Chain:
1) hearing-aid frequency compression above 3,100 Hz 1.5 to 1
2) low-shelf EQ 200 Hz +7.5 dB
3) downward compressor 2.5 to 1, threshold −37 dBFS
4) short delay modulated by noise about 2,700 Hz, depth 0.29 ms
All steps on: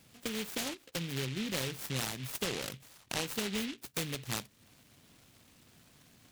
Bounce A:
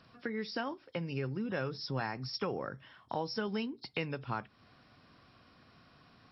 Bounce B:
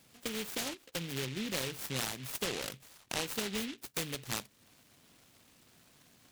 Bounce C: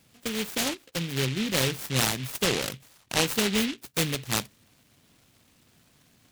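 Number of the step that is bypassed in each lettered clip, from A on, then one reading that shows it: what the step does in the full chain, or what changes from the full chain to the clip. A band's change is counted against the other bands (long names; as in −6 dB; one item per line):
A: 4, 4 kHz band −7.0 dB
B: 2, 125 Hz band −3.5 dB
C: 3, average gain reduction 6.5 dB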